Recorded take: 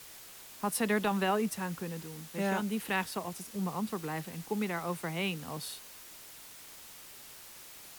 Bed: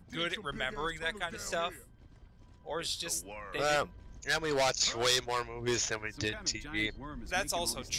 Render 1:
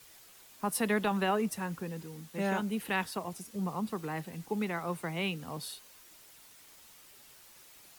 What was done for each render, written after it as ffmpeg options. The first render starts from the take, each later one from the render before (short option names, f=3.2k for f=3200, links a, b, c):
-af "afftdn=nr=7:nf=-51"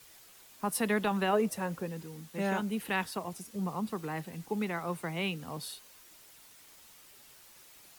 -filter_complex "[0:a]asettb=1/sr,asplit=3[a][b][c];[a]atrim=end=1.334[d];[b]atrim=start=1.33:end=1.86,asetpts=PTS-STARTPTS,afade=t=in:d=0.004:c=qsin,afade=t=out:st=0.526:d=0.004:c=qsin,equalizer=f=550:t=o:w=0.77:g=8[e];[c]atrim=start=1.856[f];[d][e]acrossfade=d=0.004:c1=hsin:c2=qsin[g];[g][f]acrossfade=d=0.004:c1=qsin:c2=hsin"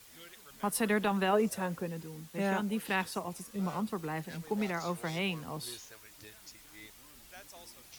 -filter_complex "[1:a]volume=-19.5dB[a];[0:a][a]amix=inputs=2:normalize=0"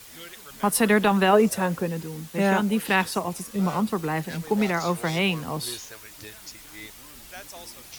-af "volume=10dB"